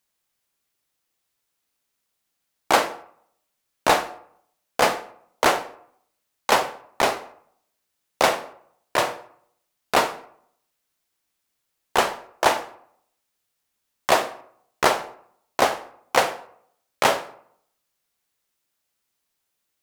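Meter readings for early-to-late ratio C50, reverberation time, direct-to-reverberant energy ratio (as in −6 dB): 15.0 dB, 0.65 s, 11.5 dB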